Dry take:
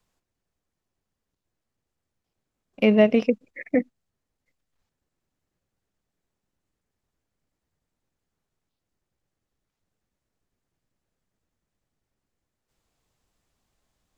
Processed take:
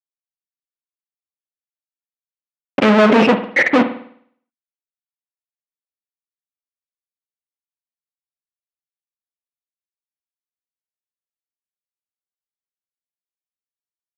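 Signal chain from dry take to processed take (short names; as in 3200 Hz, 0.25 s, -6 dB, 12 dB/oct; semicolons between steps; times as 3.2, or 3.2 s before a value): fuzz box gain 46 dB, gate -51 dBFS; BPF 220–2600 Hz; reverb, pre-delay 51 ms, DRR 9 dB; gain +4.5 dB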